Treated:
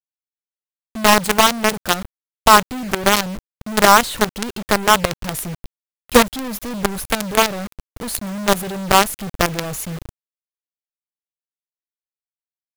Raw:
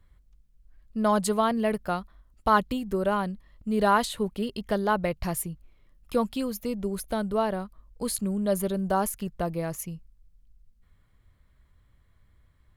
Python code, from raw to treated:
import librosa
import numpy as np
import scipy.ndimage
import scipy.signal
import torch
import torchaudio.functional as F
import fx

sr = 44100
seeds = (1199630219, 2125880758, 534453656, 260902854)

p1 = fx.rider(x, sr, range_db=3, speed_s=0.5)
p2 = x + (p1 * librosa.db_to_amplitude(0.0))
p3 = fx.quant_companded(p2, sr, bits=2)
y = p3 * librosa.db_to_amplitude(-1.0)